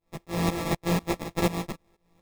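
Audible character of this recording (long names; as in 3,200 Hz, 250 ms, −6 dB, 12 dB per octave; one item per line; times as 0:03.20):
a buzz of ramps at a fixed pitch in blocks of 256 samples
tremolo saw up 4.1 Hz, depth 95%
aliases and images of a low sample rate 1,500 Hz, jitter 0%
a shimmering, thickened sound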